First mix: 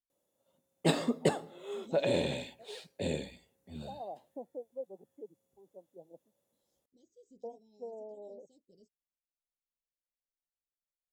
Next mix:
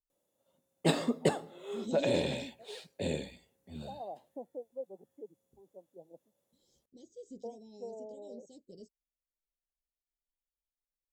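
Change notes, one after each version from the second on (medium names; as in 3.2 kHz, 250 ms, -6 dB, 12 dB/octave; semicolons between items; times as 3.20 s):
second voice +11.5 dB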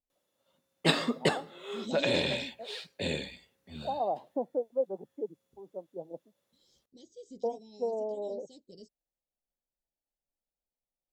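first voice +11.5 dB; master: add high-order bell 2.4 kHz +8 dB 2.6 oct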